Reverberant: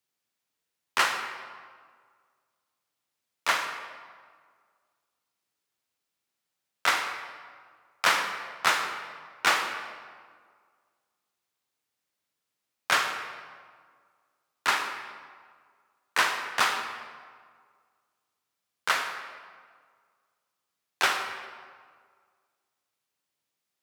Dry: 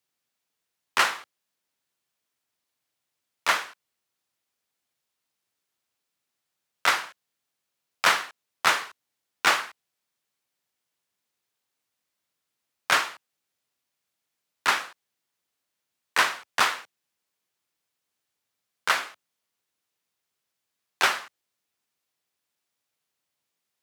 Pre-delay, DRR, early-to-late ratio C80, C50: 35 ms, 5.5 dB, 7.5 dB, 6.0 dB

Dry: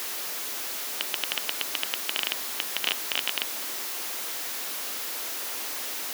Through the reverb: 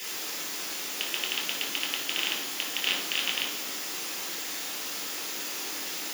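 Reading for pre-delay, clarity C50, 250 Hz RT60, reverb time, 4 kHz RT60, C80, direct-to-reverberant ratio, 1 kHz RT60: 3 ms, 3.0 dB, 1.6 s, 1.2 s, 0.75 s, 6.5 dB, −4.0 dB, 1.0 s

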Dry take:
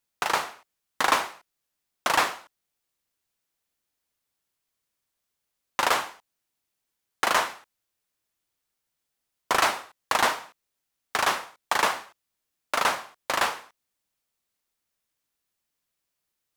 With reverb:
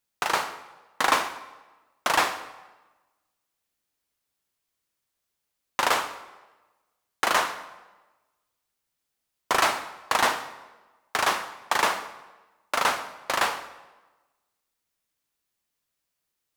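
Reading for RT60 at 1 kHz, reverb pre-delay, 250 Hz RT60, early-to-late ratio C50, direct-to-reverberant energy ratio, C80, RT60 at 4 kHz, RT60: 1.2 s, 16 ms, 1.2 s, 12.5 dB, 10.5 dB, 14.5 dB, 0.95 s, 1.2 s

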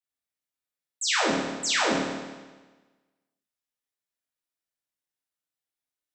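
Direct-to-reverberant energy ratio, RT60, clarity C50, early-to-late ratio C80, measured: −8.0 dB, 1.3 s, −0.5 dB, 2.0 dB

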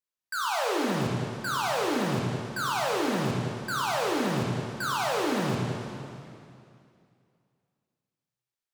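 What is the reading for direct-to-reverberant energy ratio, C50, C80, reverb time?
−3.5 dB, −1.0 dB, 0.5 dB, 2.5 s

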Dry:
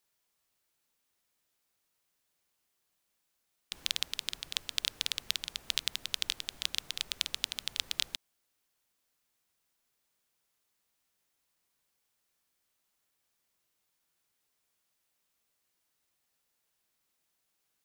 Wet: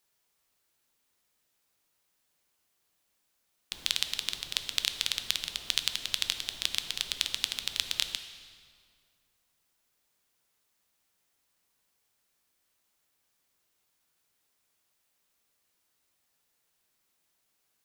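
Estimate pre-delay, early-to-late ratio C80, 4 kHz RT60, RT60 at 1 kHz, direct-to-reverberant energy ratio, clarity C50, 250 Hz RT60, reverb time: 7 ms, 11.0 dB, 1.6 s, 2.0 s, 8.0 dB, 9.5 dB, 2.5 s, 2.1 s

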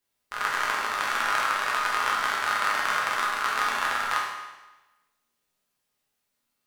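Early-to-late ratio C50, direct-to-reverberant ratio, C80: 2.0 dB, −4.5 dB, 4.5 dB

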